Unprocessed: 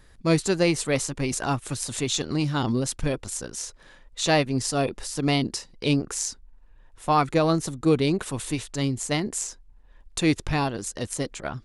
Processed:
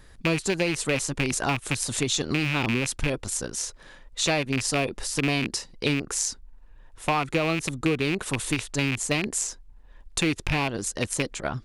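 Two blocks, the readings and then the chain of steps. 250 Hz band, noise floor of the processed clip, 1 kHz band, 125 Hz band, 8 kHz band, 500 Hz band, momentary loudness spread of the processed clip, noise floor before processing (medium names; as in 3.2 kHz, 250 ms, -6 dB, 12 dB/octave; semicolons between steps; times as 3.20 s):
-2.5 dB, -50 dBFS, -3.0 dB, -2.0 dB, +1.5 dB, -3.0 dB, 5 LU, -53 dBFS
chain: rattle on loud lows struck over -29 dBFS, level -14 dBFS; compression 6:1, threshold -24 dBFS, peak gain reduction 9.5 dB; trim +3 dB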